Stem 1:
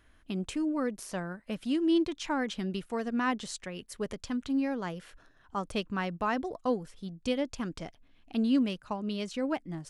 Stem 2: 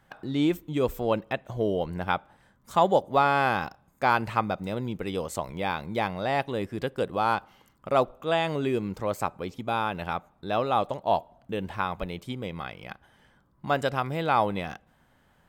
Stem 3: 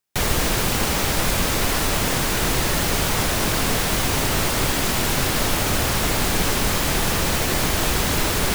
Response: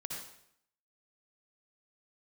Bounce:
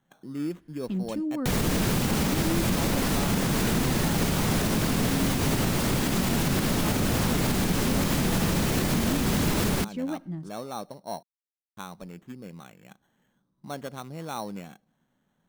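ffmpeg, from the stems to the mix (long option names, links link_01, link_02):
-filter_complex "[0:a]adelay=600,volume=-7.5dB,asplit=2[link_01][link_02];[link_02]volume=-19dB[link_03];[1:a]equalizer=frequency=73:width_type=o:width=1.9:gain=-9.5,acrusher=samples=9:mix=1:aa=0.000001,volume=-13dB,asplit=3[link_04][link_05][link_06];[link_04]atrim=end=11.23,asetpts=PTS-STARTPTS,afade=type=out:start_time=11.226:duration=0.004:curve=hsin[link_07];[link_05]atrim=start=11.23:end=11.77,asetpts=PTS-STARTPTS,volume=0[link_08];[link_06]atrim=start=11.77,asetpts=PTS-STARTPTS,afade=type=in:duration=0.004:curve=hsin[link_09];[link_07][link_08][link_09]concat=n=3:v=0:a=1[link_10];[2:a]adelay=1300,volume=-2.5dB[link_11];[3:a]atrim=start_sample=2205[link_12];[link_03][link_12]afir=irnorm=-1:irlink=0[link_13];[link_01][link_10][link_11][link_13]amix=inputs=4:normalize=0,equalizer=frequency=190:width=0.78:gain=12,alimiter=limit=-15.5dB:level=0:latency=1:release=120"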